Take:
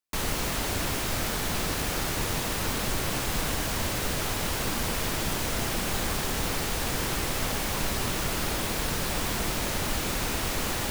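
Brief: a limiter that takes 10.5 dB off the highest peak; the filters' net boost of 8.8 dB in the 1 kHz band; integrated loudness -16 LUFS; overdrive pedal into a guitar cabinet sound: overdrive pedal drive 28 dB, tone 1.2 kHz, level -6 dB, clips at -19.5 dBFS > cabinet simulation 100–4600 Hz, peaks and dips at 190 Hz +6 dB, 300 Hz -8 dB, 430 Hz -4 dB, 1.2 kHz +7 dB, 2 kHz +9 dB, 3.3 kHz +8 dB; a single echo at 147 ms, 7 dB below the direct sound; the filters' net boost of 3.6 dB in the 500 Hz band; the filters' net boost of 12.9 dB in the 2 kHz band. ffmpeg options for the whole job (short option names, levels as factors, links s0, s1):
-filter_complex "[0:a]equalizer=f=500:t=o:g=5.5,equalizer=f=1000:t=o:g=3,equalizer=f=2000:t=o:g=7,alimiter=limit=0.0708:level=0:latency=1,aecho=1:1:147:0.447,asplit=2[s0][s1];[s1]highpass=f=720:p=1,volume=25.1,asoftclip=type=tanh:threshold=0.106[s2];[s0][s2]amix=inputs=2:normalize=0,lowpass=f=1200:p=1,volume=0.501,highpass=100,equalizer=f=190:t=q:w=4:g=6,equalizer=f=300:t=q:w=4:g=-8,equalizer=f=430:t=q:w=4:g=-4,equalizer=f=1200:t=q:w=4:g=7,equalizer=f=2000:t=q:w=4:g=9,equalizer=f=3300:t=q:w=4:g=8,lowpass=f=4600:w=0.5412,lowpass=f=4600:w=1.3066,volume=2.82"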